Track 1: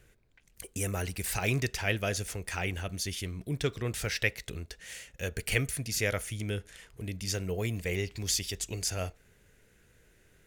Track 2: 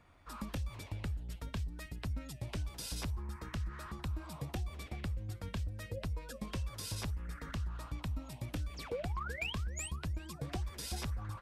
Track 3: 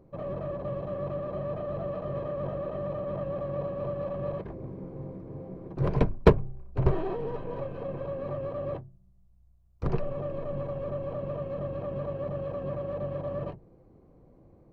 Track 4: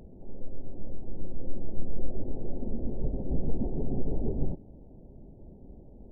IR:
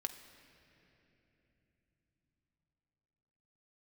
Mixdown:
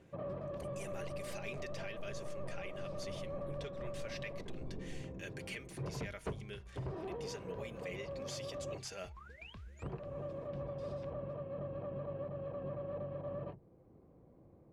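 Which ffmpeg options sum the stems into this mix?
-filter_complex "[0:a]aemphasis=mode=production:type=bsi,aecho=1:1:5:0.54,volume=-8dB[link_01];[1:a]volume=-13dB[link_02];[2:a]highpass=58,volume=-4.5dB[link_03];[3:a]adelay=500,volume=-16dB[link_04];[link_01][link_02][link_03][link_04]amix=inputs=4:normalize=0,asoftclip=type=tanh:threshold=-22.5dB,lowpass=3700,alimiter=level_in=9.5dB:limit=-24dB:level=0:latency=1:release=480,volume=-9.5dB"

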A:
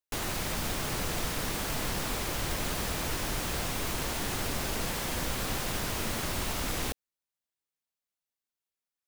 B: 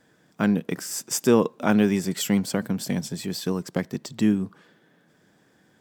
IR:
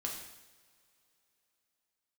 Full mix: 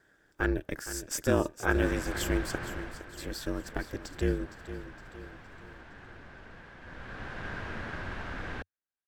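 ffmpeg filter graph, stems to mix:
-filter_complex "[0:a]lowpass=2300,equalizer=frequency=92:width=2.7:gain=3,adelay=1700,volume=5.5dB,afade=type=out:start_time=2.62:duration=0.46:silence=0.281838,afade=type=in:start_time=6.8:duration=0.72:silence=0.266073[link_01];[1:a]aeval=exprs='val(0)*sin(2*PI*140*n/s)':channel_layout=same,volume=-5dB,asplit=3[link_02][link_03][link_04];[link_02]atrim=end=2.56,asetpts=PTS-STARTPTS,afade=type=out:start_time=2.556:duration=0.004:curve=hsin[link_05];[link_03]atrim=start=2.56:end=3.17,asetpts=PTS-STARTPTS,volume=0[link_06];[link_04]atrim=start=3.17,asetpts=PTS-STARTPTS,afade=type=in:duration=0.004:curve=hsin[link_07];[link_05][link_06][link_07]concat=n=3:v=0:a=1,asplit=2[link_08][link_09];[link_09]volume=-12.5dB,aecho=0:1:463|926|1389|1852|2315|2778|3241:1|0.48|0.23|0.111|0.0531|0.0255|0.0122[link_10];[link_01][link_08][link_10]amix=inputs=3:normalize=0,equalizer=frequency=1600:width=4.7:gain=12"

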